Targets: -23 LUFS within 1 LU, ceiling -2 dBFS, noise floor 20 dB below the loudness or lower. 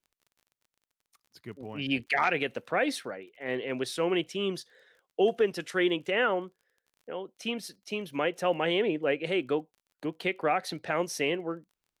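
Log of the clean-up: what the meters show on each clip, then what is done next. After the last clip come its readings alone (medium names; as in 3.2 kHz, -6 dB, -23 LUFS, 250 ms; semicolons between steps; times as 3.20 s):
tick rate 28 per s; loudness -30.0 LUFS; peak level -14.0 dBFS; loudness target -23.0 LUFS
-> de-click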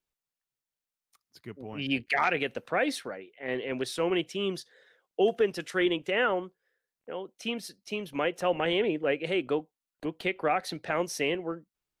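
tick rate 0.17 per s; loudness -30.0 LUFS; peak level -14.0 dBFS; loudness target -23.0 LUFS
-> trim +7 dB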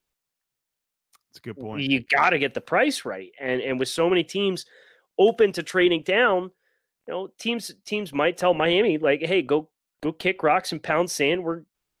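loudness -23.0 LUFS; peak level -7.0 dBFS; noise floor -84 dBFS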